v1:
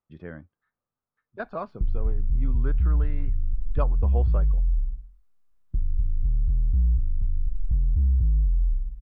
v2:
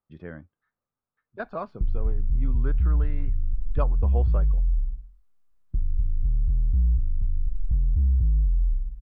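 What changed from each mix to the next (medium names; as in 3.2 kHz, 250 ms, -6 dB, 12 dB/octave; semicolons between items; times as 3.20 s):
no change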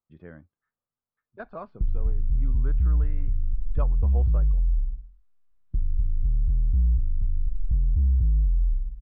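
speech -5.0 dB; master: add distance through air 160 m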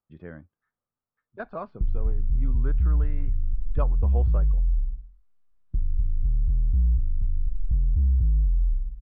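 speech +3.5 dB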